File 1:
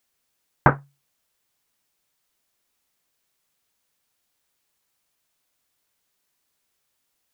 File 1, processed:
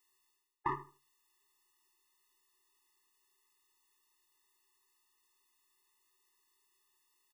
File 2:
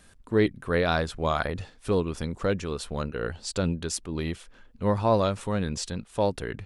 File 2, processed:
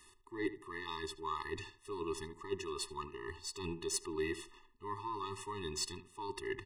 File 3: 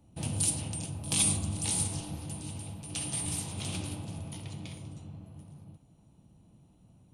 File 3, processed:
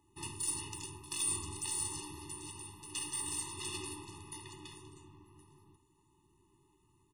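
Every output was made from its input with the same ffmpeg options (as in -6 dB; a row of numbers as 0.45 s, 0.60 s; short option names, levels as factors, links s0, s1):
-filter_complex "[0:a]aeval=exprs='if(lt(val(0),0),0.708*val(0),val(0))':c=same,lowshelf=f=310:t=q:w=3:g=-13,areverse,acompressor=threshold=0.0224:ratio=4,areverse,asplit=2[s0][s1];[s1]adelay=77,lowpass=f=1900:p=1,volume=0.237,asplit=2[s2][s3];[s3]adelay=77,lowpass=f=1900:p=1,volume=0.27,asplit=2[s4][s5];[s5]adelay=77,lowpass=f=1900:p=1,volume=0.27[s6];[s0][s2][s4][s6]amix=inputs=4:normalize=0,afftfilt=real='re*eq(mod(floor(b*sr/1024/420),2),0)':imag='im*eq(mod(floor(b*sr/1024/420),2),0)':win_size=1024:overlap=0.75,volume=1.41"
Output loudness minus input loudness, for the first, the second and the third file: -18.0 LU, -13.0 LU, -6.0 LU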